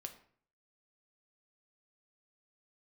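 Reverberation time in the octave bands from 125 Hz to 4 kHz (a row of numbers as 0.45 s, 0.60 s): 0.65 s, 0.60 s, 0.55 s, 0.50 s, 0.50 s, 0.40 s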